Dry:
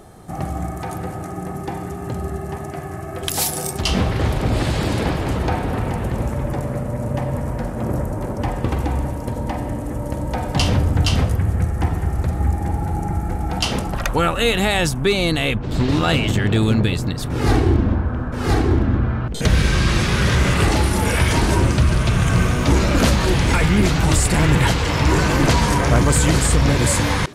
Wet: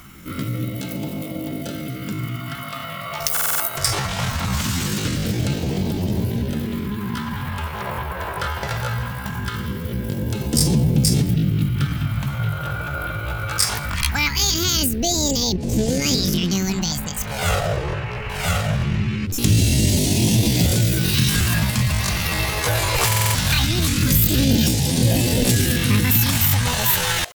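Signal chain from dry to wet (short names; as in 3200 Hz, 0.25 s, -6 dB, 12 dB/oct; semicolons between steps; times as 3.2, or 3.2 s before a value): pitch shift +9.5 st; high shelf 6800 Hz +6 dB; in parallel at +0.5 dB: compressor, threshold -26 dBFS, peak gain reduction 14.5 dB; on the sum: phaser stages 2, 0.21 Hz, lowest notch 230–1300 Hz; stuck buffer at 3.32/23.07, samples 2048, times 5; gain -2.5 dB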